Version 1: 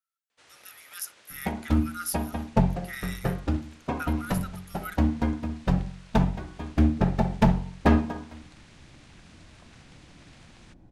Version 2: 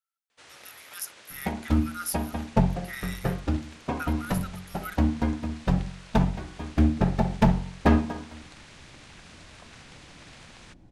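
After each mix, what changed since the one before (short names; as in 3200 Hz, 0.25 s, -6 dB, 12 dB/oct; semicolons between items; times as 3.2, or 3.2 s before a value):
first sound +6.0 dB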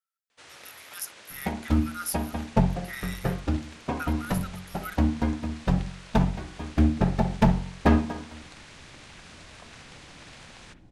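first sound: send on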